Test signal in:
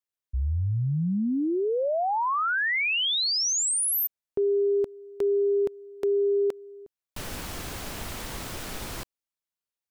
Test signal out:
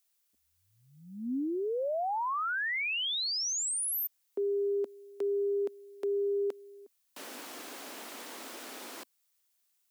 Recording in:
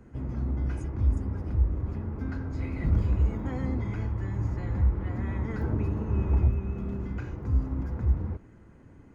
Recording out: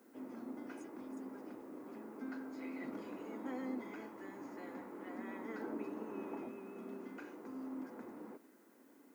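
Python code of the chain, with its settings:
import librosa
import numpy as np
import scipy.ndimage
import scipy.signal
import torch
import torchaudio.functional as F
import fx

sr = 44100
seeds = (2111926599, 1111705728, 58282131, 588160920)

y = scipy.signal.sosfilt(scipy.signal.cheby1(4, 1.0, 250.0, 'highpass', fs=sr, output='sos'), x)
y = fx.dmg_noise_colour(y, sr, seeds[0], colour='blue', level_db=-69.0)
y = F.gain(torch.from_numpy(y), -6.0).numpy()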